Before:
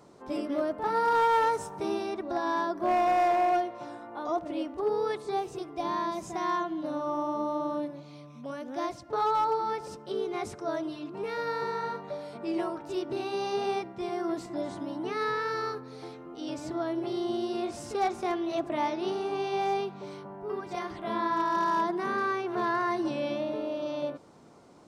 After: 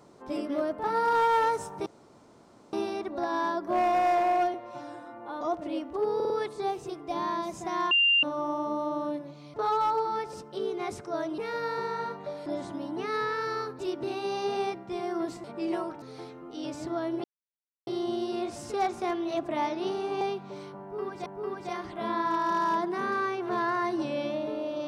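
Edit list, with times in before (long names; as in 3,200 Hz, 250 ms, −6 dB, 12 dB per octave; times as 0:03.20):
0:01.86: splice in room tone 0.87 s
0:03.67–0:04.25: time-stretch 1.5×
0:04.99: stutter 0.05 s, 4 plays
0:06.60–0:06.92: beep over 2,790 Hz −19 dBFS
0:08.23–0:09.08: remove
0:10.92–0:11.22: remove
0:12.30–0:12.88: swap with 0:14.53–0:15.86
0:17.08: splice in silence 0.63 s
0:19.42–0:19.72: remove
0:20.32–0:20.77: repeat, 2 plays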